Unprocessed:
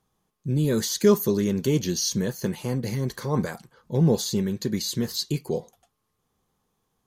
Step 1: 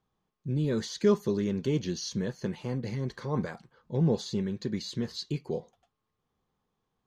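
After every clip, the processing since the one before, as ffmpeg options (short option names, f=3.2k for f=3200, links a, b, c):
-af "lowpass=4.3k,volume=-5.5dB"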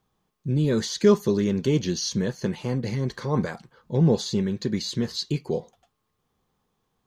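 -af "highshelf=f=5.3k:g=4.5,volume=6dB"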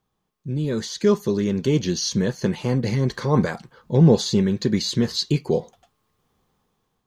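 -af "dynaudnorm=f=580:g=5:m=11.5dB,volume=-2.5dB"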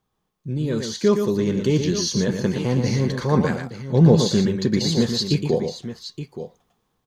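-af "aecho=1:1:117|872:0.473|0.266"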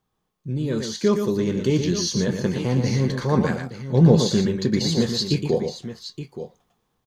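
-filter_complex "[0:a]asplit=2[a][b];[b]adelay=23,volume=-13.5dB[c];[a][c]amix=inputs=2:normalize=0,volume=-1dB"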